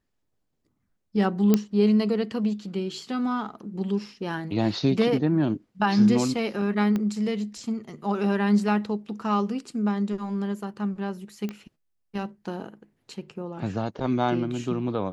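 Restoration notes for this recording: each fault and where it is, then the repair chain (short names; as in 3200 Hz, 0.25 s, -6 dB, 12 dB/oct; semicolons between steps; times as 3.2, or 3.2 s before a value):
1.54 pop -7 dBFS
6.96 pop -16 dBFS
11.49 pop -20 dBFS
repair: de-click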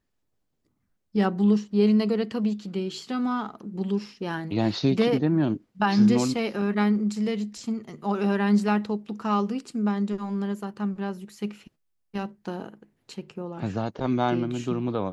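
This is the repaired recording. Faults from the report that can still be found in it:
6.96 pop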